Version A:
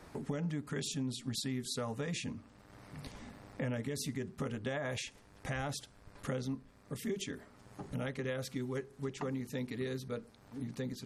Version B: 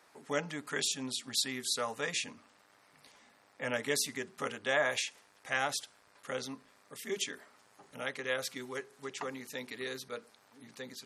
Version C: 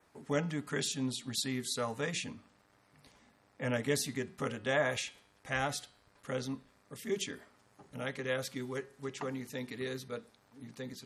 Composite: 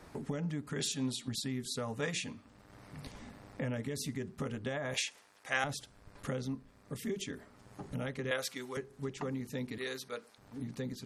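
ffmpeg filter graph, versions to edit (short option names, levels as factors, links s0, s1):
-filter_complex "[2:a]asplit=2[s0][s1];[1:a]asplit=3[s2][s3][s4];[0:a]asplit=6[s5][s6][s7][s8][s9][s10];[s5]atrim=end=0.802[s11];[s0]atrim=start=0.798:end=1.282[s12];[s6]atrim=start=1.278:end=2.002[s13];[s1]atrim=start=1.998:end=2.452[s14];[s7]atrim=start=2.448:end=4.942[s15];[s2]atrim=start=4.938:end=5.642[s16];[s8]atrim=start=5.638:end=8.312[s17];[s3]atrim=start=8.308:end=8.772[s18];[s9]atrim=start=8.768:end=9.782[s19];[s4]atrim=start=9.778:end=10.382[s20];[s10]atrim=start=10.378[s21];[s11][s12]acrossfade=d=0.004:c1=hsin:c2=hsin[s22];[s22][s13]acrossfade=d=0.004:c1=hsin:c2=hsin[s23];[s23][s14]acrossfade=d=0.004:c1=hsin:c2=hsin[s24];[s24][s15]acrossfade=d=0.004:c1=hsin:c2=hsin[s25];[s25][s16]acrossfade=d=0.004:c1=hsin:c2=hsin[s26];[s26][s17]acrossfade=d=0.004:c1=hsin:c2=hsin[s27];[s27][s18]acrossfade=d=0.004:c1=hsin:c2=hsin[s28];[s28][s19]acrossfade=d=0.004:c1=hsin:c2=hsin[s29];[s29][s20]acrossfade=d=0.004:c1=hsin:c2=hsin[s30];[s30][s21]acrossfade=d=0.004:c1=hsin:c2=hsin"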